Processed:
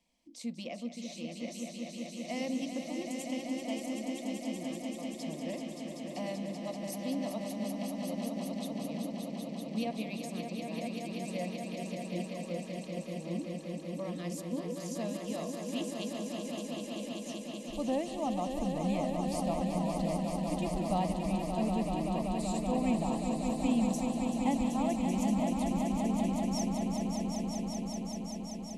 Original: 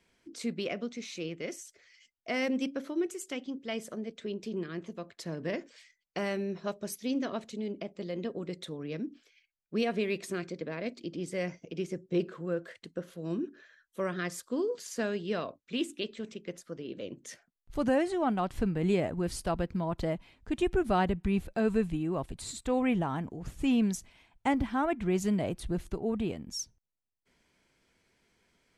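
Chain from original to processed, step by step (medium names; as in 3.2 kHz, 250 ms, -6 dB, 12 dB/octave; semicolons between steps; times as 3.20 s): static phaser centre 400 Hz, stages 6; echo with a slow build-up 192 ms, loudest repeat 5, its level -6.5 dB; trim -3.5 dB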